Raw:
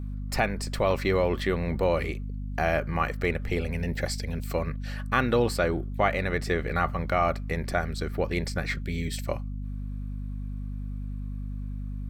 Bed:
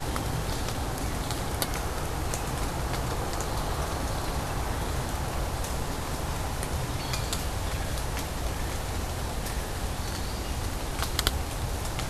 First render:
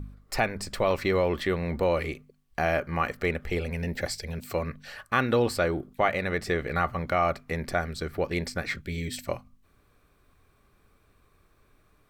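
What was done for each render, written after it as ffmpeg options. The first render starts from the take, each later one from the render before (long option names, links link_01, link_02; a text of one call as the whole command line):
ffmpeg -i in.wav -af "bandreject=frequency=50:width_type=h:width=4,bandreject=frequency=100:width_type=h:width=4,bandreject=frequency=150:width_type=h:width=4,bandreject=frequency=200:width_type=h:width=4,bandreject=frequency=250:width_type=h:width=4" out.wav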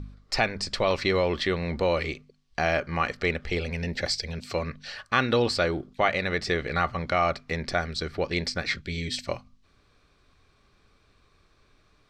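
ffmpeg -i in.wav -af "lowpass=6100,equalizer=frequency=4700:width=0.88:gain=10" out.wav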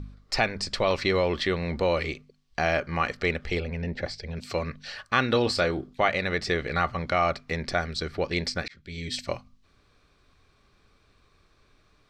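ffmpeg -i in.wav -filter_complex "[0:a]asettb=1/sr,asplit=3[link_01][link_02][link_03];[link_01]atrim=end=3.604[link_04];[link_02]atrim=start=3.6:end=4.37,asetpts=PTS-STARTPTS,afade=type=in:duration=0.004:curve=qsin,afade=type=out:start_time=0.766:duration=0.004:curve=qsin,lowpass=frequency=1400:poles=1[link_05];[link_03]atrim=start=4.366[link_06];[link_04][link_05]acrossfade=duration=0.004:curve1=hsin:curve2=qsin[link_07];[link_07][link_06]acrossfade=duration=0.004:curve1=qsin:curve2=hsin,asettb=1/sr,asplit=3[link_08][link_09][link_10];[link_08]atrim=end=5.324[link_11];[link_09]atrim=start=5.32:end=6.01,asetpts=PTS-STARTPTS,afade=type=in:duration=0.004:curve=qsin,afade=type=out:start_time=0.686:duration=0.004:curve=qsin,asplit=2[link_12][link_13];[link_13]adelay=28,volume=-11.5dB[link_14];[link_12][link_14]amix=inputs=2:normalize=0,atrim=end_sample=30429[link_15];[link_10]atrim=start=6.006[link_16];[link_11][link_15]acrossfade=duration=0.004:curve1=hsin:curve2=qsin[link_17];[link_17][link_16]acrossfade=duration=0.004:curve1=qsin:curve2=hsin,asplit=2[link_18][link_19];[link_18]atrim=end=8.68,asetpts=PTS-STARTPTS,afade=type=out:start_time=8.676:duration=0.004:curve=hsin[link_20];[link_19]atrim=start=8.68,asetpts=PTS-STARTPTS,afade=type=in:duration=0.5[link_21];[link_20][link_21]concat=n=2:v=0:a=1" out.wav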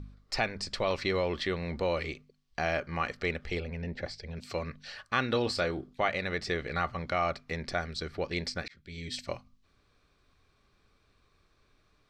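ffmpeg -i in.wav -af "volume=-5.5dB" out.wav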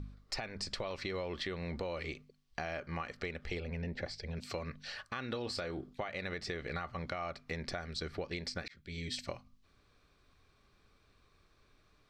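ffmpeg -i in.wav -af "alimiter=limit=-22.5dB:level=0:latency=1:release=274,acompressor=threshold=-35dB:ratio=6" out.wav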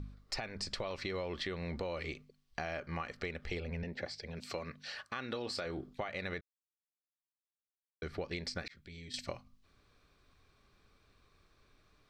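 ffmpeg -i in.wav -filter_complex "[0:a]asettb=1/sr,asplit=3[link_01][link_02][link_03];[link_01]atrim=end=3.834[link_04];[link_02]atrim=start=3.83:end=5.66,asetpts=PTS-STARTPTS,afade=type=in:duration=0.004:curve=qsin,afade=type=out:start_time=1.826:duration=0.004:curve=qsin,highpass=frequency=170:poles=1[link_05];[link_03]atrim=start=5.656[link_06];[link_04][link_05]acrossfade=duration=0.004:curve1=hsin:curve2=qsin[link_07];[link_07][link_06]acrossfade=duration=0.004:curve1=qsin:curve2=hsin,asettb=1/sr,asplit=3[link_08][link_09][link_10];[link_08]atrim=end=8.744[link_11];[link_09]atrim=start=8.74:end=9.14,asetpts=PTS-STARTPTS,afade=type=in:duration=0.004:curve=qsin,afade=type=out:start_time=0.396:duration=0.004:curve=qsin,acompressor=threshold=-48dB:ratio=3:attack=3.2:release=140:knee=1:detection=peak[link_12];[link_10]atrim=start=9.136[link_13];[link_11][link_12]acrossfade=duration=0.004:curve1=hsin:curve2=qsin[link_14];[link_14][link_13]acrossfade=duration=0.004:curve1=qsin:curve2=hsin,asplit=3[link_15][link_16][link_17];[link_15]atrim=end=6.41,asetpts=PTS-STARTPTS,afade=type=out:start_time=6.406:duration=0.004:curve=hsin[link_18];[link_16]atrim=start=6.41:end=8.02,asetpts=PTS-STARTPTS,volume=0[link_19];[link_17]atrim=start=8.02,asetpts=PTS-STARTPTS,afade=type=in:duration=0.004:curve=hsin[link_20];[link_18][link_19][link_20]concat=n=3:v=0:a=1" out.wav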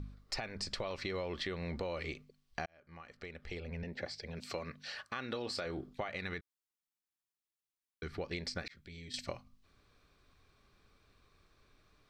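ffmpeg -i in.wav -filter_complex "[0:a]asettb=1/sr,asplit=3[link_01][link_02][link_03];[link_01]atrim=end=6.164[link_04];[link_02]atrim=start=6.16:end=8.2,asetpts=PTS-STARTPTS,afade=type=in:duration=0.004:curve=qsin,afade=type=out:start_time=2.036:duration=0.004:curve=qsin,equalizer=frequency=580:width=3.3:gain=-11[link_05];[link_03]atrim=start=8.196[link_06];[link_04][link_05]acrossfade=duration=0.004:curve1=hsin:curve2=qsin[link_07];[link_07][link_06]acrossfade=duration=0.004:curve1=qsin:curve2=hsin,asplit=2[link_08][link_09];[link_08]atrim=end=2.66,asetpts=PTS-STARTPTS,afade=type=out:start_time=2.656:duration=0.004:curve=hsin[link_10];[link_09]atrim=start=2.66,asetpts=PTS-STARTPTS,afade=type=in:duration=1.44[link_11];[link_10][link_11]concat=n=2:v=0:a=1" out.wav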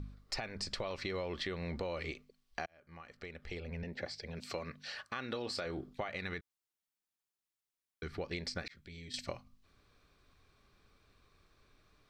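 ffmpeg -i in.wav -filter_complex "[0:a]asettb=1/sr,asplit=3[link_01][link_02][link_03];[link_01]atrim=end=2.114[link_04];[link_02]atrim=start=2.11:end=2.71,asetpts=PTS-STARTPTS,afade=type=in:duration=0.004:curve=qsin,afade=type=out:start_time=0.596:duration=0.004:curve=qsin,equalizer=frequency=120:width=1.5:gain=-12.5[link_05];[link_03]atrim=start=2.706[link_06];[link_04][link_05]acrossfade=duration=0.004:curve1=hsin:curve2=qsin[link_07];[link_07][link_06]acrossfade=duration=0.004:curve1=qsin:curve2=hsin" out.wav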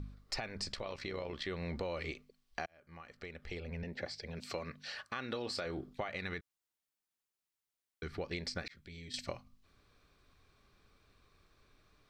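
ffmpeg -i in.wav -filter_complex "[0:a]asplit=3[link_01][link_02][link_03];[link_01]afade=type=out:start_time=0.71:duration=0.02[link_04];[link_02]tremolo=f=64:d=0.621,afade=type=in:start_time=0.71:duration=0.02,afade=type=out:start_time=1.46:duration=0.02[link_05];[link_03]afade=type=in:start_time=1.46:duration=0.02[link_06];[link_04][link_05][link_06]amix=inputs=3:normalize=0" out.wav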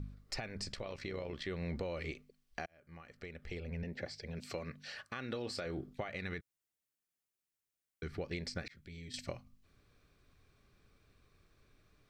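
ffmpeg -i in.wav -af "equalizer=frequency=125:width_type=o:width=1:gain=3,equalizer=frequency=1000:width_type=o:width=1:gain=-5,equalizer=frequency=4000:width_type=o:width=1:gain=-4" out.wav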